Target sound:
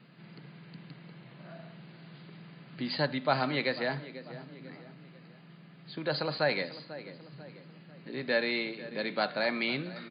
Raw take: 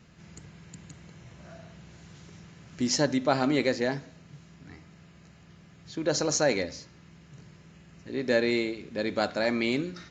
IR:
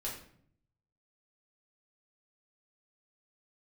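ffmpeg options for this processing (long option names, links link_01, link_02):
-filter_complex "[0:a]aecho=1:1:493|986|1479:0.126|0.0491|0.0191,acrossover=split=190|550|3100[link_01][link_02][link_03][link_04];[link_02]acompressor=threshold=-44dB:ratio=6[link_05];[link_01][link_05][link_03][link_04]amix=inputs=4:normalize=0,afftfilt=real='re*between(b*sr/4096,120,4900)':imag='im*between(b*sr/4096,120,4900)':win_size=4096:overlap=0.75"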